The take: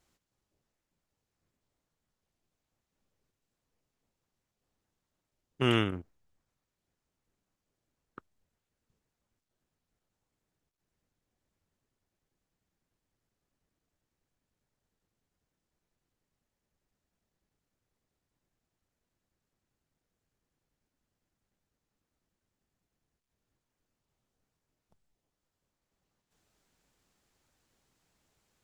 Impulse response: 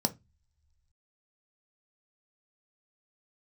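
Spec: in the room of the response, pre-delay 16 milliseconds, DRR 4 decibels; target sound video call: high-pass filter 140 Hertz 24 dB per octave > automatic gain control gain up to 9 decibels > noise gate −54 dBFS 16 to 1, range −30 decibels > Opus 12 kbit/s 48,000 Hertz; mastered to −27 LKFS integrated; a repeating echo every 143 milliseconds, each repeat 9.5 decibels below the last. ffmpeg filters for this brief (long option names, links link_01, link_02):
-filter_complex "[0:a]aecho=1:1:143|286|429|572:0.335|0.111|0.0365|0.012,asplit=2[link_01][link_02];[1:a]atrim=start_sample=2205,adelay=16[link_03];[link_02][link_03]afir=irnorm=-1:irlink=0,volume=-10dB[link_04];[link_01][link_04]amix=inputs=2:normalize=0,highpass=frequency=140:width=0.5412,highpass=frequency=140:width=1.3066,dynaudnorm=maxgain=9dB,agate=range=-30dB:threshold=-54dB:ratio=16,volume=-1dB" -ar 48000 -c:a libopus -b:a 12k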